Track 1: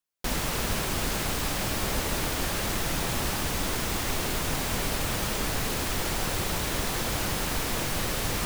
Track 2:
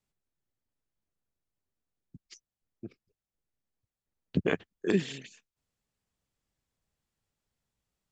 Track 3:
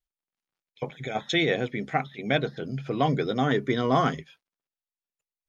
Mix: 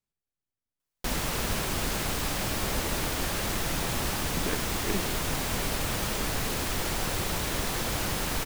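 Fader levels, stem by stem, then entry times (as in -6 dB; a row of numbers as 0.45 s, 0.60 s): -1.0 dB, -6.5 dB, mute; 0.80 s, 0.00 s, mute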